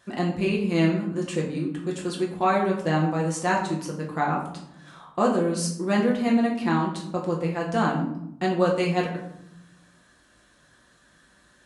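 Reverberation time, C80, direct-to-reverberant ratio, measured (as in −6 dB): 0.80 s, 9.5 dB, −2.5 dB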